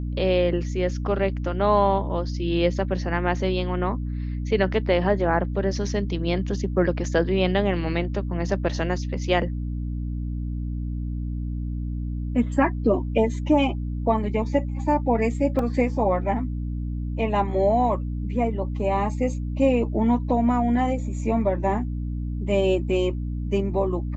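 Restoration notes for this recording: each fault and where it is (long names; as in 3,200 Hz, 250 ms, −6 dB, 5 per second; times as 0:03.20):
mains hum 60 Hz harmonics 5 −28 dBFS
0:15.59: drop-out 2.4 ms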